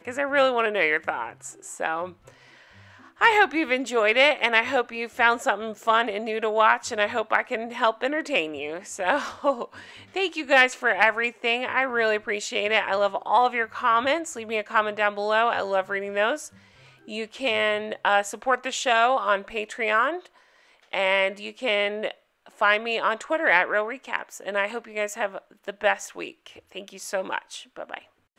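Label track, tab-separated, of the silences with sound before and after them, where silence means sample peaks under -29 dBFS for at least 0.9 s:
2.080000	3.210000	silence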